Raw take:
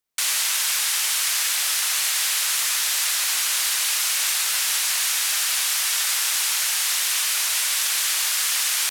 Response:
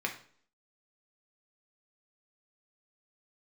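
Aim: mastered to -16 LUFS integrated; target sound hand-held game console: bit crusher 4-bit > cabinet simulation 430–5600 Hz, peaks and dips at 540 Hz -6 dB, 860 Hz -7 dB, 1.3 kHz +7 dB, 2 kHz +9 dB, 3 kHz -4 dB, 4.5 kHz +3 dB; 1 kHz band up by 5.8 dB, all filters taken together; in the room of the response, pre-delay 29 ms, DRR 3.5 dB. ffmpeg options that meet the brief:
-filter_complex "[0:a]equalizer=f=1000:t=o:g=3,asplit=2[s0][s1];[1:a]atrim=start_sample=2205,adelay=29[s2];[s1][s2]afir=irnorm=-1:irlink=0,volume=0.355[s3];[s0][s3]amix=inputs=2:normalize=0,acrusher=bits=3:mix=0:aa=0.000001,highpass=430,equalizer=f=540:t=q:w=4:g=-6,equalizer=f=860:t=q:w=4:g=-7,equalizer=f=1300:t=q:w=4:g=7,equalizer=f=2000:t=q:w=4:g=9,equalizer=f=3000:t=q:w=4:g=-4,equalizer=f=4500:t=q:w=4:g=3,lowpass=f=5600:w=0.5412,lowpass=f=5600:w=1.3066,volume=1.5"

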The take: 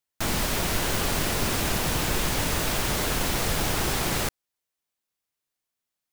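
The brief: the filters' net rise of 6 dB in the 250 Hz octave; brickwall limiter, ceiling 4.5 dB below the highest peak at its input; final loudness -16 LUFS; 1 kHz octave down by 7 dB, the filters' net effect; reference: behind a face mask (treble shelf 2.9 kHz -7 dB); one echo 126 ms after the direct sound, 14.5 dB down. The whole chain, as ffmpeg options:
-af "equalizer=f=250:t=o:g=8.5,equalizer=f=1000:t=o:g=-9,alimiter=limit=0.158:level=0:latency=1,highshelf=f=2900:g=-7,aecho=1:1:126:0.188,volume=3.98"

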